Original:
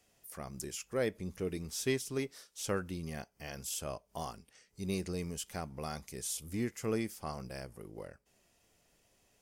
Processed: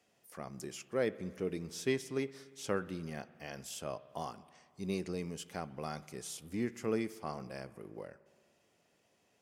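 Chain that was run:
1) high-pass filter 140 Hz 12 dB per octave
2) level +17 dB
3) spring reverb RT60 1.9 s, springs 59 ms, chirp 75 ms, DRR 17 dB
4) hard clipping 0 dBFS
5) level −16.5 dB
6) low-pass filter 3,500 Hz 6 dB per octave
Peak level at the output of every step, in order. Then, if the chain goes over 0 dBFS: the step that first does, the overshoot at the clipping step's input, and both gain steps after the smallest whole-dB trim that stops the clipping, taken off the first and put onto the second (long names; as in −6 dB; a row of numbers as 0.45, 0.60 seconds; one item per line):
−18.5, −1.5, −1.5, −1.5, −18.0, −18.5 dBFS
no step passes full scale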